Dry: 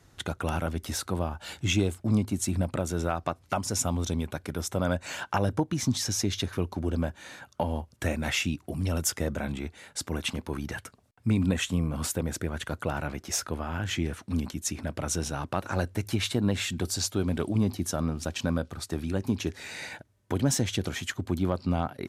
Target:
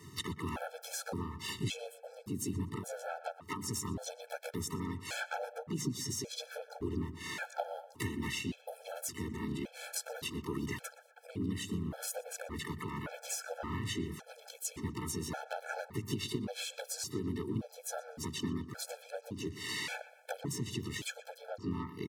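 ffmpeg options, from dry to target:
-filter_complex "[0:a]highpass=f=86:w=0.5412,highpass=f=86:w=1.3066,equalizer=f=2.1k:w=5.4:g=-2.5,bandreject=f=50:t=h:w=6,bandreject=f=100:t=h:w=6,bandreject=f=150:t=h:w=6,bandreject=f=200:t=h:w=6,acompressor=threshold=-41dB:ratio=20,asplit=3[a][b][c];[b]asetrate=52444,aresample=44100,atempo=0.840896,volume=-4dB[d];[c]asetrate=66075,aresample=44100,atempo=0.66742,volume=-8dB[e];[a][d][e]amix=inputs=3:normalize=0,asplit=2[f][g];[g]adelay=121,lowpass=f=2.7k:p=1,volume=-14.5dB,asplit=2[h][i];[i]adelay=121,lowpass=f=2.7k:p=1,volume=0.52,asplit=2[j][k];[k]adelay=121,lowpass=f=2.7k:p=1,volume=0.52,asplit=2[l][m];[m]adelay=121,lowpass=f=2.7k:p=1,volume=0.52,asplit=2[n][o];[o]adelay=121,lowpass=f=2.7k:p=1,volume=0.52[p];[h][j][l][n][p]amix=inputs=5:normalize=0[q];[f][q]amix=inputs=2:normalize=0,afftfilt=real='re*gt(sin(2*PI*0.88*pts/sr)*(1-2*mod(floor(b*sr/1024/440),2)),0)':imag='im*gt(sin(2*PI*0.88*pts/sr)*(1-2*mod(floor(b*sr/1024/440),2)),0)':win_size=1024:overlap=0.75,volume=7.5dB"

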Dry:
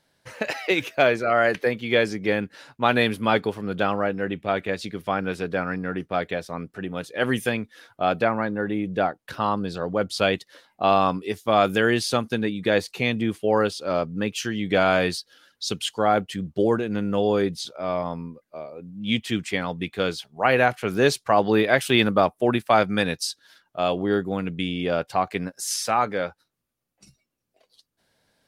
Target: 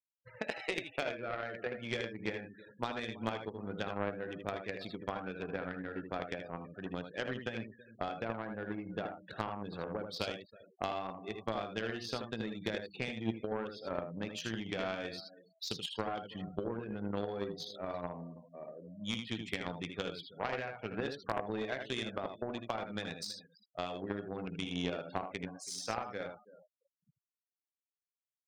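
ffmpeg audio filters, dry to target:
-filter_complex "[0:a]equalizer=f=3.7k:t=o:w=0.48:g=4,acompressor=threshold=-25dB:ratio=10,asplit=2[a][b];[b]adelay=18,volume=-12dB[c];[a][c]amix=inputs=2:normalize=0,bandreject=f=297.7:t=h:w=4,bandreject=f=595.4:t=h:w=4,bandreject=f=893.1:t=h:w=4,bandreject=f=1.1908k:t=h:w=4,bandreject=f=1.4885k:t=h:w=4,bandreject=f=1.7862k:t=h:w=4,bandreject=f=2.0839k:t=h:w=4,bandreject=f=2.3816k:t=h:w=4,bandreject=f=2.6793k:t=h:w=4,bandreject=f=2.977k:t=h:w=4,bandreject=f=3.2747k:t=h:w=4,bandreject=f=3.5724k:t=h:w=4,bandreject=f=3.8701k:t=h:w=4,bandreject=f=4.1678k:t=h:w=4,bandreject=f=4.4655k:t=h:w=4,bandreject=f=4.7632k:t=h:w=4,bandreject=f=5.0609k:t=h:w=4,bandreject=f=5.3586k:t=h:w=4,bandreject=f=5.6563k:t=h:w=4,bandreject=f=5.954k:t=h:w=4,bandreject=f=6.2517k:t=h:w=4,bandreject=f=6.5494k:t=h:w=4,bandreject=f=6.8471k:t=h:w=4,bandreject=f=7.1448k:t=h:w=4,bandreject=f=7.4425k:t=h:w=4,bandreject=f=7.7402k:t=h:w=4,bandreject=f=8.0379k:t=h:w=4,bandreject=f=8.3356k:t=h:w=4,bandreject=f=8.6333k:t=h:w=4,bandreject=f=8.931k:t=h:w=4,asplit=2[d][e];[e]aecho=0:1:327|654:0.178|0.0373[f];[d][f]amix=inputs=2:normalize=0,adynamicsmooth=sensitivity=5.5:basefreq=5.2k,asplit=2[g][h];[h]aecho=0:1:53|79:0.178|0.596[i];[g][i]amix=inputs=2:normalize=0,afftfilt=real='re*gte(hypot(re,im),0.0158)':imag='im*gte(hypot(re,im),0.0158)':win_size=1024:overlap=0.75,adynamicequalizer=threshold=0.00316:dfrequency=1200:dqfactor=6.7:tfrequency=1200:tqfactor=6.7:attack=5:release=100:ratio=0.375:range=3:mode=cutabove:tftype=bell,aeval=exprs='0.188*(cos(1*acos(clip(val(0)/0.188,-1,1)))-cos(1*PI/2))+0.0376*(cos(3*acos(clip(val(0)/0.188,-1,1)))-cos(3*PI/2))':c=same,volume=-5dB"

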